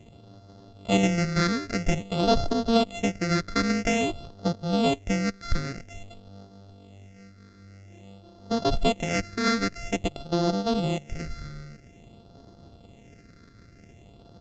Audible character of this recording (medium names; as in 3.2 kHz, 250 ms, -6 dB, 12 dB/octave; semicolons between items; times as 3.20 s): a buzz of ramps at a fixed pitch in blocks of 64 samples; phasing stages 6, 0.5 Hz, lowest notch 770–2300 Hz; µ-law